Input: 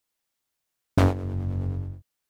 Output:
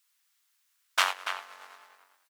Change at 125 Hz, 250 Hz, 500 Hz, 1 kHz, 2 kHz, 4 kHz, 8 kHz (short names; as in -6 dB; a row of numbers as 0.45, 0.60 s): under -40 dB, under -35 dB, -14.5 dB, +2.0 dB, +8.5 dB, +12.0 dB, +10.0 dB